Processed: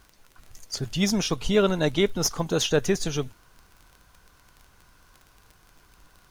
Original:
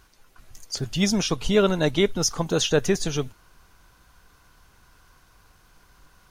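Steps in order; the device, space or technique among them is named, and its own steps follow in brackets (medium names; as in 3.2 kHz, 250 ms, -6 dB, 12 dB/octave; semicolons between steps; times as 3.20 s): record under a worn stylus (tracing distortion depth 0.021 ms; crackle 27 per s -35 dBFS; pink noise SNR 39 dB); trim -1.5 dB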